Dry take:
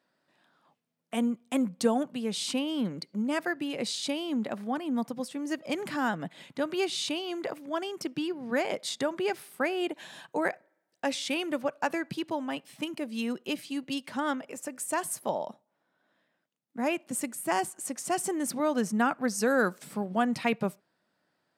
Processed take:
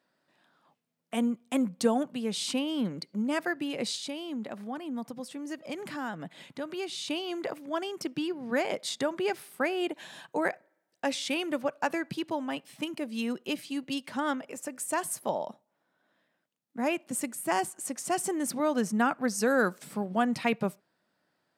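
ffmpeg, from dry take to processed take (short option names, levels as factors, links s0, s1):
-filter_complex "[0:a]asettb=1/sr,asplit=3[s0][s1][s2];[s0]atrim=end=3.964[s3];[s1]atrim=start=3.96:end=7.1,asetpts=PTS-STARTPTS,afade=t=in:d=0.004:c=qsin,afade=t=out:st=3.136:d=0.004:c=qsin,acompressor=threshold=0.00794:ratio=1.5:attack=3.2:release=140:knee=1:detection=peak[s4];[s2]atrim=start=7.096[s5];[s3][s4]acrossfade=d=0.004:c1=hsin:c2=qsin[s6];[s6][s5]acrossfade=d=0.004:c1=qsin:c2=hsin"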